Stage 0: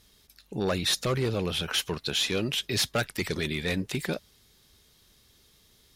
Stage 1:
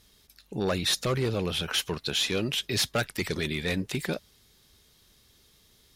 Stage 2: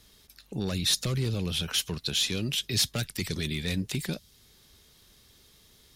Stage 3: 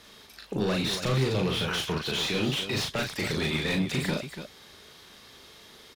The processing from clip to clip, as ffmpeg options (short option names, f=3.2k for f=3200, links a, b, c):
-af anull
-filter_complex "[0:a]acrossover=split=240|3000[a][b][c];[b]acompressor=threshold=-46dB:ratio=2.5[d];[a][d][c]amix=inputs=3:normalize=0,volume=2.5dB"
-filter_complex "[0:a]asplit=2[a][b];[b]highpass=f=720:p=1,volume=25dB,asoftclip=type=tanh:threshold=-13.5dB[c];[a][c]amix=inputs=2:normalize=0,lowpass=f=1.4k:p=1,volume=-6dB,aecho=1:1:37.9|285.7:0.708|0.355,volume=-3.5dB"